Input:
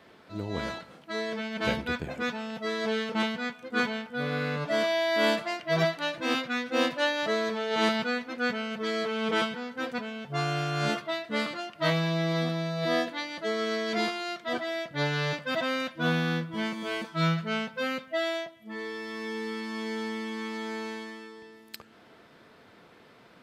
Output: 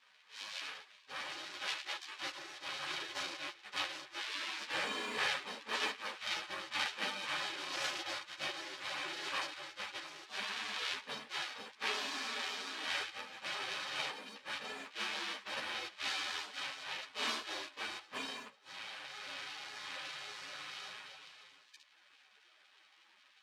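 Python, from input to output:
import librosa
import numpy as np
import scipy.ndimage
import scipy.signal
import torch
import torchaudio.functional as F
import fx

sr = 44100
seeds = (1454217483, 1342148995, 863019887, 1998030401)

y = np.r_[np.sort(x[:len(x) // 64 * 64].reshape(-1, 64), axis=1).ravel(), x[len(x) // 64 * 64:]]
y = fx.spec_gate(y, sr, threshold_db=-25, keep='weak')
y = scipy.signal.sosfilt(scipy.signal.cheby1(2, 1.0, [260.0, 3900.0], 'bandpass', fs=sr, output='sos'), y)
y = fx.ensemble(y, sr)
y = y * 10.0 ** (10.0 / 20.0)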